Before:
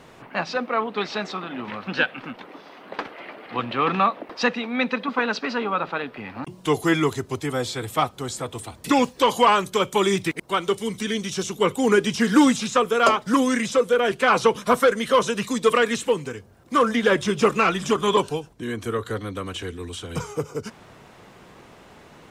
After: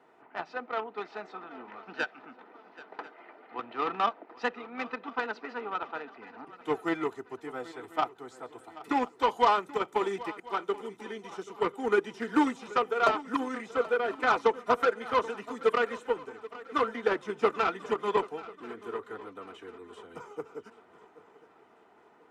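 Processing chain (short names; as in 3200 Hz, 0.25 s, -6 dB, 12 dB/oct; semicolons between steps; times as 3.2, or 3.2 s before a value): three-band isolator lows -21 dB, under 290 Hz, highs -15 dB, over 2000 Hz; added harmonics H 7 -23 dB, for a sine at -5.5 dBFS; notch comb 550 Hz; on a send: swung echo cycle 1.041 s, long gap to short 3:1, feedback 40%, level -18 dB; on the sum: gain -3.5 dB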